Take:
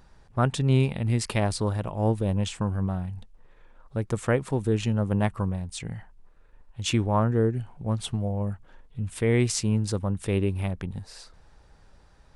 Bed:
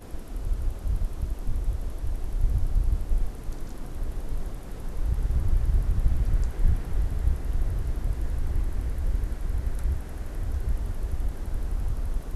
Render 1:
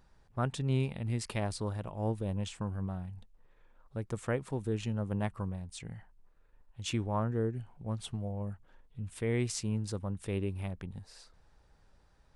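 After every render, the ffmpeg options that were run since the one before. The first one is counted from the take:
ffmpeg -i in.wav -af "volume=-9dB" out.wav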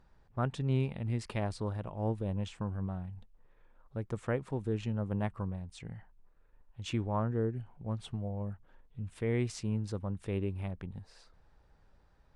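ffmpeg -i in.wav -af "lowpass=frequency=2800:poles=1" out.wav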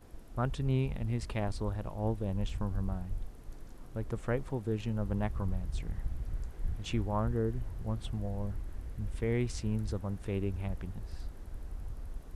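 ffmpeg -i in.wav -i bed.wav -filter_complex "[1:a]volume=-13dB[link_01];[0:a][link_01]amix=inputs=2:normalize=0" out.wav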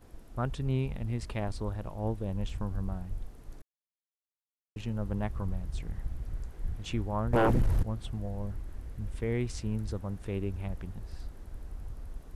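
ffmpeg -i in.wav -filter_complex "[0:a]asettb=1/sr,asplit=3[link_01][link_02][link_03];[link_01]atrim=end=7.334[link_04];[link_02]atrim=start=7.33:end=7.83,asetpts=PTS-STARTPTS,afade=type=in:duration=0.004:curve=qsin,afade=type=out:start_time=0.496:duration=0.004:curve=qsin,aeval=exprs='0.1*sin(PI/2*3.98*val(0)/0.1)':channel_layout=same[link_05];[link_03]atrim=start=7.826[link_06];[link_04][link_05]acrossfade=duration=0.004:curve1=hsin:curve2=qsin[link_07];[link_07][link_06]acrossfade=duration=0.004:curve1=qsin:curve2=hsin,asplit=3[link_08][link_09][link_10];[link_08]atrim=end=3.62,asetpts=PTS-STARTPTS,afade=type=out:start_time=3.616:duration=0.004:curve=hsin[link_11];[link_09]atrim=start=3.62:end=4.76,asetpts=PTS-STARTPTS,volume=0[link_12];[link_10]atrim=start=4.76,asetpts=PTS-STARTPTS,afade=type=in:duration=0.004:curve=hsin[link_13];[link_11][link_12][link_13]concat=n=3:v=0:a=1" out.wav

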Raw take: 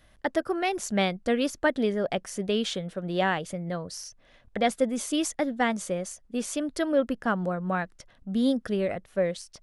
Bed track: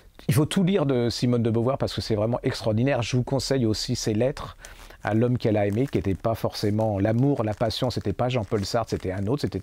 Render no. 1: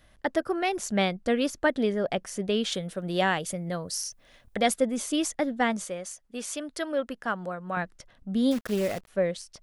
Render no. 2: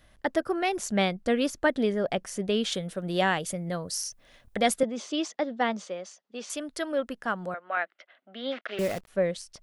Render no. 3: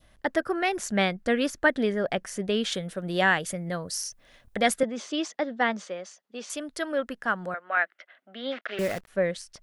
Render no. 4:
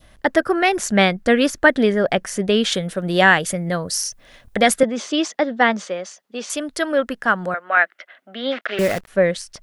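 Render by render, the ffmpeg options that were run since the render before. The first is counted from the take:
ffmpeg -i in.wav -filter_complex "[0:a]asettb=1/sr,asplit=3[link_01][link_02][link_03];[link_01]atrim=end=2.724[link_04];[link_02]atrim=start=2.72:end=4.74,asetpts=PTS-STARTPTS,afade=type=in:duration=0.004:curve=qsin,afade=type=out:start_time=2.016:duration=0.004:curve=qsin,aemphasis=mode=production:type=50kf[link_05];[link_03]atrim=start=4.736[link_06];[link_04][link_05]acrossfade=duration=0.004:curve1=hsin:curve2=qsin[link_07];[link_07][link_06]acrossfade=duration=0.004:curve1=qsin:curve2=hsin,asettb=1/sr,asplit=3[link_08][link_09][link_10];[link_08]atrim=end=5.844[link_11];[link_09]atrim=start=5.84:end=7.77,asetpts=PTS-STARTPTS,afade=type=in:duration=0.004:curve=qsin,afade=type=out:start_time=1.926:duration=0.004:curve=qsin,lowshelf=frequency=480:gain=-10[link_12];[link_10]atrim=start=7.766[link_13];[link_11][link_12]acrossfade=duration=0.004:curve1=hsin:curve2=qsin[link_14];[link_14][link_13]acrossfade=duration=0.004:curve1=qsin:curve2=hsin,asettb=1/sr,asplit=3[link_15][link_16][link_17];[link_15]atrim=end=8.514[link_18];[link_16]atrim=start=8.51:end=9.08,asetpts=PTS-STARTPTS,afade=type=in:duration=0.004:curve=qsin,afade=type=out:start_time=0.566:duration=0.004:curve=qsin,acrusher=bits=7:dc=4:mix=0:aa=0.000001[link_19];[link_17]atrim=start=9.076[link_20];[link_18][link_19]acrossfade=duration=0.004:curve1=hsin:curve2=qsin[link_21];[link_21][link_20]acrossfade=duration=0.004:curve1=qsin:curve2=hsin" out.wav
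ffmpeg -i in.wav -filter_complex "[0:a]asettb=1/sr,asplit=3[link_01][link_02][link_03];[link_01]atrim=end=4.834[link_04];[link_02]atrim=start=4.83:end=6.5,asetpts=PTS-STARTPTS,afade=type=in:duration=0.004:curve=qsin,afade=type=out:start_time=1.666:duration=0.004:curve=qsin,highpass=frequency=200:width=0.5412,highpass=frequency=200:width=1.3066,equalizer=frequency=270:width_type=q:width=4:gain=-6,equalizer=frequency=1600:width_type=q:width=4:gain=-3,equalizer=frequency=2200:width_type=q:width=4:gain=-3,lowpass=frequency=5600:width=0.5412,lowpass=frequency=5600:width=1.3066[link_05];[link_03]atrim=start=6.496[link_06];[link_04][link_05]acrossfade=duration=0.004:curve1=hsin:curve2=qsin[link_07];[link_07][link_06]acrossfade=duration=0.004:curve1=qsin:curve2=hsin,asettb=1/sr,asplit=3[link_08][link_09][link_10];[link_08]atrim=end=7.544[link_11];[link_09]atrim=start=7.54:end=8.79,asetpts=PTS-STARTPTS,afade=type=in:duration=0.004:curve=qsin,afade=type=out:start_time=1.246:duration=0.004:curve=qsin,highpass=frequency=390:width=0.5412,highpass=frequency=390:width=1.3066,equalizer=frequency=440:width_type=q:width=4:gain=-10,equalizer=frequency=660:width_type=q:width=4:gain=4,equalizer=frequency=970:width_type=q:width=4:gain=-6,equalizer=frequency=1400:width_type=q:width=4:gain=5,equalizer=frequency=2100:width_type=q:width=4:gain=7,equalizer=frequency=3000:width_type=q:width=4:gain=4,lowpass=frequency=3700:width=0.5412,lowpass=frequency=3700:width=1.3066[link_12];[link_10]atrim=start=8.786[link_13];[link_11][link_12]acrossfade=duration=0.004:curve1=hsin:curve2=qsin[link_14];[link_14][link_13]acrossfade=duration=0.004:curve1=qsin:curve2=hsin" out.wav
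ffmpeg -i in.wav -af "adynamicequalizer=threshold=0.00708:dfrequency=1700:dqfactor=1.9:tfrequency=1700:tqfactor=1.9:attack=5:release=100:ratio=0.375:range=3.5:mode=boostabove:tftype=bell" out.wav
ffmpeg -i in.wav -af "volume=9dB,alimiter=limit=-1dB:level=0:latency=1" out.wav

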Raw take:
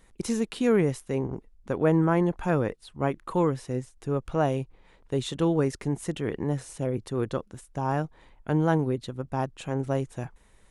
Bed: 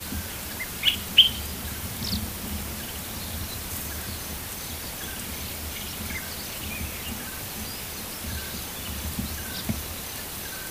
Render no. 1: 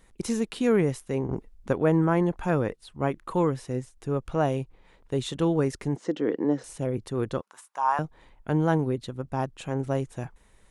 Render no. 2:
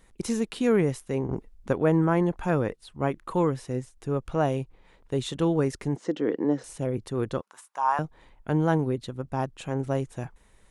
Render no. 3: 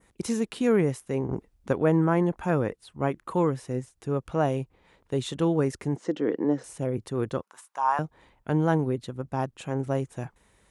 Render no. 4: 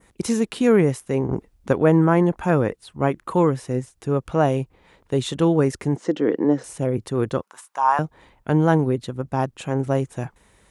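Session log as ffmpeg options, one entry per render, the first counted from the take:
ffmpeg -i in.wav -filter_complex "[0:a]asettb=1/sr,asplit=3[link_01][link_02][link_03];[link_01]atrim=end=5.964[link_04];[link_02]atrim=start=5.96:end=6.64,asetpts=PTS-STARTPTS,afade=type=in:duration=0.004:curve=qsin,afade=type=out:start_time=0.676:duration=0.004:curve=qsin,highpass=frequency=170:width=0.5412,highpass=frequency=170:width=1.3066,equalizer=frequency=170:width_type=q:width=4:gain=-5,equalizer=frequency=300:width_type=q:width=4:gain=8,equalizer=frequency=490:width_type=q:width=4:gain=7,equalizer=frequency=2500:width_type=q:width=4:gain=-7,equalizer=frequency=3600:width_type=q:width=4:gain=-3,lowpass=frequency=5700:width=0.5412,lowpass=frequency=5700:width=1.3066[link_05];[link_03]atrim=start=6.636[link_06];[link_04][link_05]acrossfade=duration=0.004:curve1=hsin:curve2=qsin[link_07];[link_07][link_06]acrossfade=duration=0.004:curve1=qsin:curve2=hsin,asettb=1/sr,asplit=3[link_08][link_09][link_10];[link_08]atrim=end=7.414[link_11];[link_09]atrim=start=7.41:end=7.99,asetpts=PTS-STARTPTS,afade=type=in:duration=0.004:curve=qsin,afade=type=out:start_time=0.576:duration=0.004:curve=qsin,highpass=frequency=1000:width_type=q:width=3.2[link_12];[link_10]atrim=start=7.986[link_13];[link_11][link_12]acrossfade=duration=0.004:curve1=hsin:curve2=qsin[link_14];[link_14][link_13]acrossfade=duration=0.004:curve1=qsin:curve2=hsin,asplit=3[link_15][link_16][link_17];[link_15]atrim=end=1.292[link_18];[link_16]atrim=start=1.288:end=1.732,asetpts=PTS-STARTPTS,volume=4.5dB[link_19];[link_17]atrim=start=1.728[link_20];[link_18][link_19]acrossfade=duration=0.004:curve1=hsin:curve2=hsin[link_21];[link_21][link_20]acrossfade=duration=0.004:curve1=hsin:curve2=hsin" out.wav
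ffmpeg -i in.wav -af anull out.wav
ffmpeg -i in.wav -af "highpass=59,adynamicequalizer=threshold=0.002:dfrequency=4000:dqfactor=1.3:tfrequency=4000:tqfactor=1.3:attack=5:release=100:ratio=0.375:range=2:mode=cutabove:tftype=bell" out.wav
ffmpeg -i in.wav -af "volume=6dB" out.wav

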